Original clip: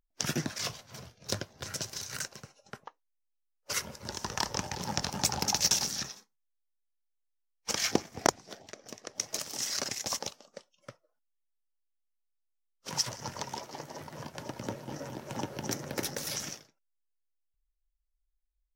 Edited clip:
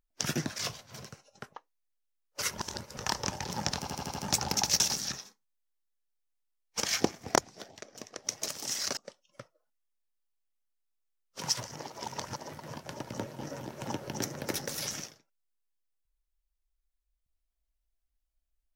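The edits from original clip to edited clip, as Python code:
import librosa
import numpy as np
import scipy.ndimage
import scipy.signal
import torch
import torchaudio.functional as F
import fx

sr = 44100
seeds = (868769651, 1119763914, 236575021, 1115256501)

y = fx.edit(x, sr, fx.cut(start_s=1.04, length_s=1.31),
    fx.reverse_span(start_s=3.89, length_s=0.39),
    fx.stutter(start_s=5.08, slice_s=0.08, count=6),
    fx.cut(start_s=9.88, length_s=0.58),
    fx.reverse_span(start_s=13.25, length_s=0.6), tone=tone)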